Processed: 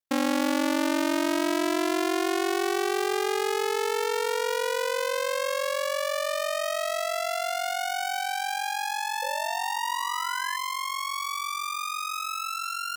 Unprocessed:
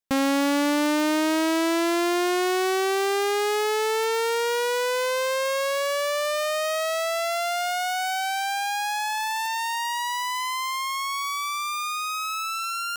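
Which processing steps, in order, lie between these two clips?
sound drawn into the spectrogram rise, 0:09.22–0:10.57, 520–1,800 Hz −33 dBFS
ring modulation 23 Hz

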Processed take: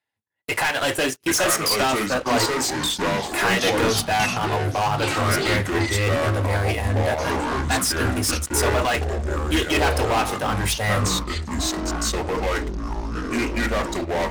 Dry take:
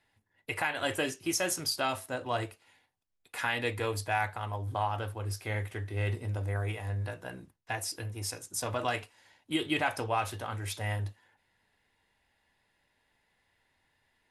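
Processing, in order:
high-pass filter 160 Hz 6 dB per octave
mains-hum notches 60/120/180/240/300/360/420 Hz
transient designer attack −4 dB, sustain −8 dB
leveller curve on the samples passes 5
delay with pitch and tempo change per echo 618 ms, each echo −5 semitones, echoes 3

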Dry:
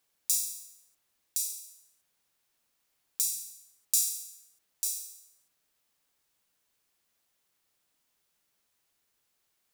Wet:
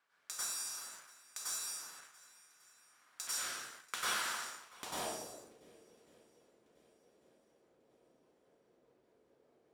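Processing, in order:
0:03.27–0:04.96: sub-harmonics by changed cycles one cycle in 2, muted
rotating-speaker cabinet horn 0.9 Hz, later 5 Hz, at 0:05.61
downward compressor 16 to 1, threshold −42 dBFS, peak gain reduction 18 dB
dense smooth reverb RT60 1.1 s, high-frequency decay 0.7×, pre-delay 85 ms, DRR −7.5 dB
leveller curve on the samples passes 2
low-shelf EQ 440 Hz +9.5 dB
on a send: feedback echo with a long and a short gap by turns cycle 1,144 ms, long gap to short 1.5 to 1, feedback 38%, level −23 dB
on the sum: dynamic equaliser 2,200 Hz, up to −6 dB, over −59 dBFS, Q 1.4
band-pass filter sweep 1,400 Hz → 470 Hz, 0:04.54–0:05.52
level +17 dB

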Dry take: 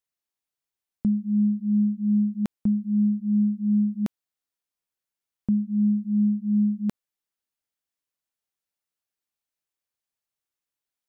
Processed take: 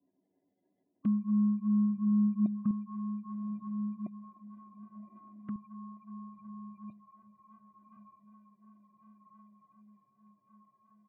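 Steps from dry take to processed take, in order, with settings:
drawn EQ curve 180 Hz 0 dB, 320 Hz −22 dB, 490 Hz +2 dB, 950 Hz −9 dB, 1,500 Hz +13 dB
decimation without filtering 34×
comb filter 3 ms, depth 45%
gate on every frequency bin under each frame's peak −15 dB strong
downward compressor 2 to 1, threshold −34 dBFS, peak gain reduction 4.5 dB
high-pass filter 130 Hz 24 dB per octave
feedback delay with all-pass diffusion 1,096 ms, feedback 65%, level −9 dB
flanger swept by the level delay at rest 11.1 ms, full sweep at −31.5 dBFS
parametric band 230 Hz +13 dB 1.3 octaves, from 0:02.71 +3.5 dB, from 0:05.56 −7.5 dB
level −5 dB

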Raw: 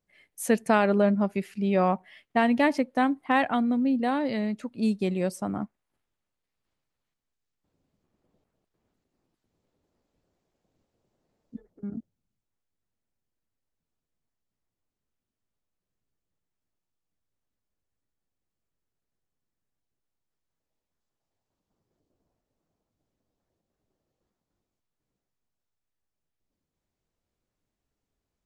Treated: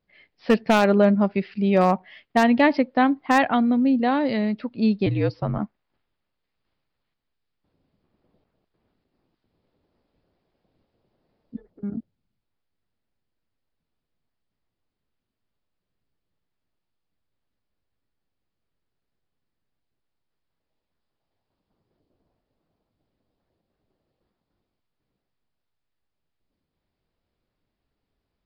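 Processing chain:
downsampling to 11,025 Hz
wave folding −13.5 dBFS
0:05.06–0:05.59: frequency shifter −64 Hz
level +5 dB

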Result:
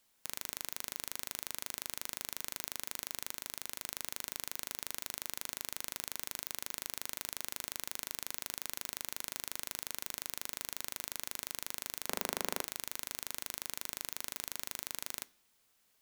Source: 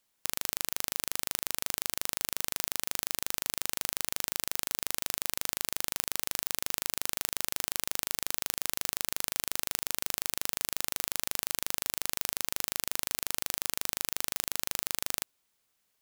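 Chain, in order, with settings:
0:03.34–0:03.83: compressor whose output falls as the input rises −44 dBFS, ratio −1
0:12.06–0:12.61: Butterworth high-pass 170 Hz 72 dB per octave
soft clipping −14 dBFS, distortion −13 dB
on a send: convolution reverb RT60 0.50 s, pre-delay 3 ms, DRR 14 dB
on the sum: level +3.5 dB

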